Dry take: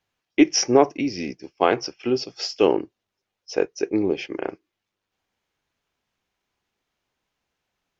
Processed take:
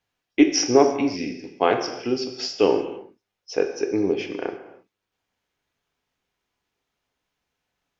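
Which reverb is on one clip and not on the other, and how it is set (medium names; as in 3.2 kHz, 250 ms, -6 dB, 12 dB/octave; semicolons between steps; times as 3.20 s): gated-style reverb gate 350 ms falling, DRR 5 dB; trim -1.5 dB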